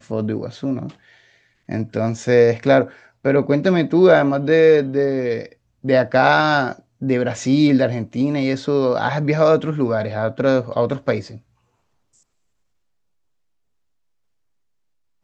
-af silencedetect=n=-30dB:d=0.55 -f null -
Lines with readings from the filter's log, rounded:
silence_start: 0.90
silence_end: 1.69 | silence_duration: 0.79
silence_start: 11.37
silence_end: 15.24 | silence_duration: 3.87